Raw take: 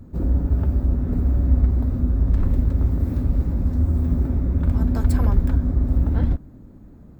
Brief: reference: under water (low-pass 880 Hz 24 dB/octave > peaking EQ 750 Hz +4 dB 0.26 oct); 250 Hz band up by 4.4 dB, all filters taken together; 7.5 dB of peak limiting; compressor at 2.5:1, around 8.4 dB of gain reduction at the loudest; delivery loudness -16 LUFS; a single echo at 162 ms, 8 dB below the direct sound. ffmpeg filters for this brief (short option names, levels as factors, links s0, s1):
-af "equalizer=f=250:t=o:g=5,acompressor=threshold=0.0562:ratio=2.5,alimiter=limit=0.0841:level=0:latency=1,lowpass=f=880:w=0.5412,lowpass=f=880:w=1.3066,equalizer=f=750:t=o:w=0.26:g=4,aecho=1:1:162:0.398,volume=5.01"